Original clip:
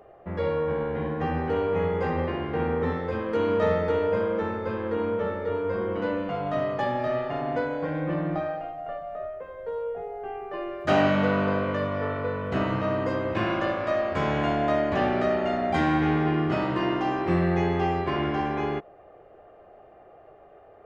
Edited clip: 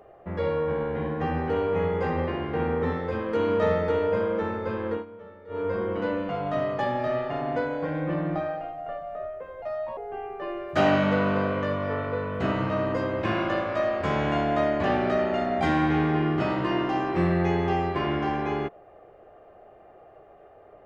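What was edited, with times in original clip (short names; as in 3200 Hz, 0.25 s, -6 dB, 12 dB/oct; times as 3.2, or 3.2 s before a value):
4.92–5.61 dip -17 dB, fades 0.13 s
9.62–10.09 speed 133%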